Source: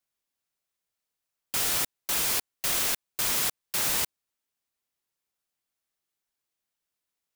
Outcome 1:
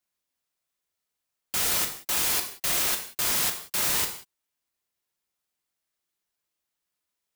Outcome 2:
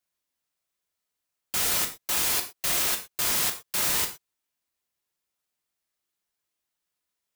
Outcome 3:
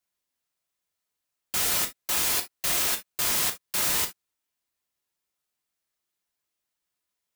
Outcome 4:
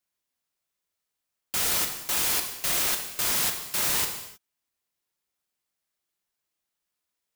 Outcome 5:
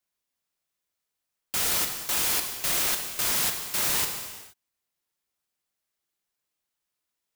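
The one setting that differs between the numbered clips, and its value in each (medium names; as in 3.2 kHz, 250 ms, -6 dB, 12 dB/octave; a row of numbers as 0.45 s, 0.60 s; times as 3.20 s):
gated-style reverb, gate: 210 ms, 140 ms, 90 ms, 340 ms, 500 ms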